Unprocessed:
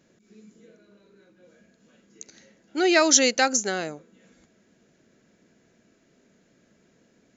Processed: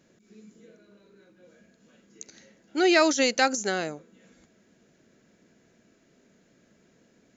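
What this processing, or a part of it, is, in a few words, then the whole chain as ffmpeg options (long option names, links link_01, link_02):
de-esser from a sidechain: -filter_complex "[0:a]asplit=2[link_01][link_02];[link_02]highpass=5500,apad=whole_len=324776[link_03];[link_01][link_03]sidechaincompress=threshold=-28dB:ratio=12:attack=2.3:release=26"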